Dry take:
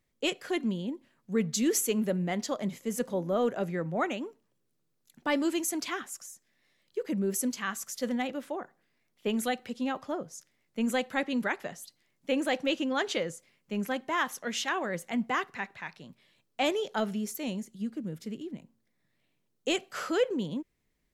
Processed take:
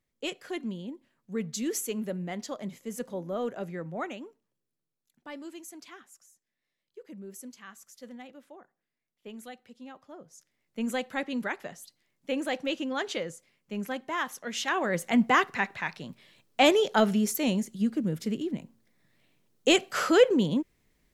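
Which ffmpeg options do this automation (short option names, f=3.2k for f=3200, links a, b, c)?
-af "volume=17dB,afade=t=out:st=3.89:d=1.39:silence=0.334965,afade=t=in:st=10.11:d=0.69:silence=0.251189,afade=t=in:st=14.51:d=0.64:silence=0.334965"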